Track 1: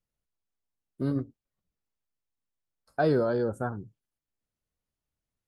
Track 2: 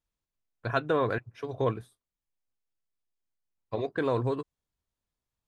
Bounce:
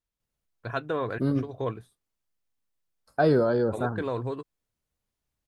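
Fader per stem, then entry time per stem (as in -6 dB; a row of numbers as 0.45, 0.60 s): +3.0, -3.0 dB; 0.20, 0.00 s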